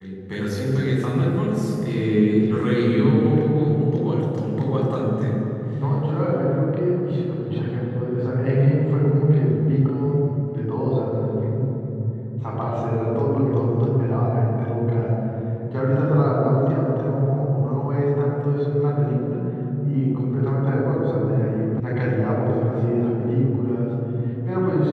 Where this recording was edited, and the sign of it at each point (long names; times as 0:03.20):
0:21.80: cut off before it has died away